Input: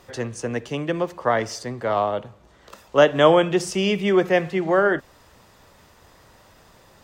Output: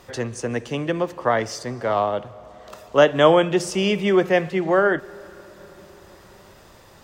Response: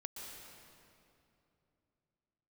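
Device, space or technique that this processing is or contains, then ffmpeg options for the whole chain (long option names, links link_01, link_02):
ducked reverb: -filter_complex "[0:a]asplit=3[link_01][link_02][link_03];[1:a]atrim=start_sample=2205[link_04];[link_02][link_04]afir=irnorm=-1:irlink=0[link_05];[link_03]apad=whole_len=310286[link_06];[link_05][link_06]sidechaincompress=threshold=-28dB:ratio=8:attack=5.5:release=1290,volume=-3.5dB[link_07];[link_01][link_07]amix=inputs=2:normalize=0"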